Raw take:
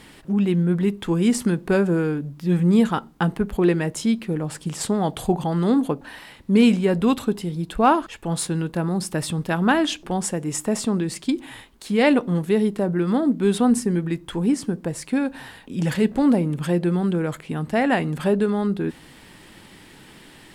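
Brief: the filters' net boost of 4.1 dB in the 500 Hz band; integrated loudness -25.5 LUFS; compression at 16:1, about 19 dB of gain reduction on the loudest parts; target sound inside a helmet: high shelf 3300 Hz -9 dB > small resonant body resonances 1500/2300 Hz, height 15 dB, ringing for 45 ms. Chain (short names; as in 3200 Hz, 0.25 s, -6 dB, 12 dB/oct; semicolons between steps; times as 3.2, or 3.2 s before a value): bell 500 Hz +5.5 dB; compressor 16:1, threshold -29 dBFS; high shelf 3300 Hz -9 dB; small resonant body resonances 1500/2300 Hz, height 15 dB, ringing for 45 ms; gain +8.5 dB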